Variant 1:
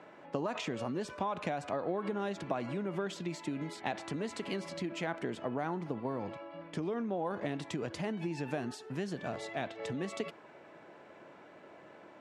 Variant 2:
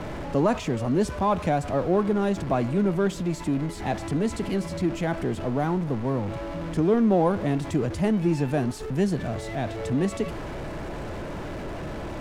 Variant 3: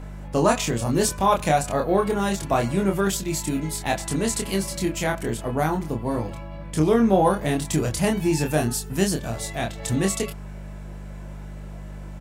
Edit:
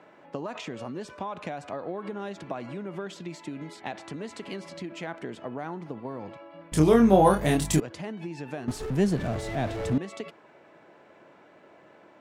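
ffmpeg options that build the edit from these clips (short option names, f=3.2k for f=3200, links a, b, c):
-filter_complex "[0:a]asplit=3[a][b][c];[a]atrim=end=6.722[d];[2:a]atrim=start=6.718:end=7.802[e];[b]atrim=start=7.798:end=8.682[f];[1:a]atrim=start=8.678:end=9.982[g];[c]atrim=start=9.978[h];[d][e]acrossfade=d=0.004:c1=hsin:c2=hsin[i];[i][f]acrossfade=d=0.004:c1=hsin:c2=hsin[j];[j][g]acrossfade=d=0.004:c1=hsin:c2=hsin[k];[k][h]acrossfade=d=0.004:c1=hsin:c2=hsin"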